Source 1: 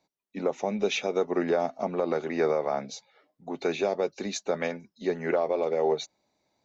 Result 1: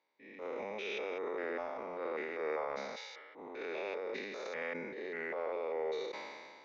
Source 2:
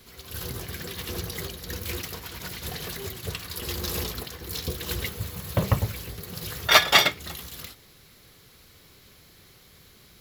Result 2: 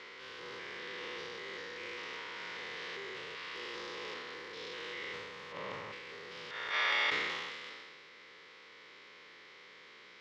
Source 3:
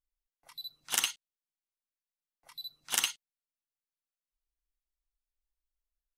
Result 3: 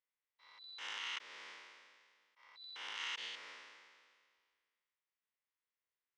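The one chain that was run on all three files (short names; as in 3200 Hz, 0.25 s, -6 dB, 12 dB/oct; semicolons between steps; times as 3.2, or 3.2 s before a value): stepped spectrum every 0.2 s; compressor 2:1, threshold -44 dBFS; speaker cabinet 460–4500 Hz, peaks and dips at 480 Hz +4 dB, 700 Hz -9 dB, 1000 Hz +4 dB, 2000 Hz +7 dB, 4200 Hz -6 dB; transient shaper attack -9 dB, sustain +7 dB; sustainer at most 31 dB/s; gain +3.5 dB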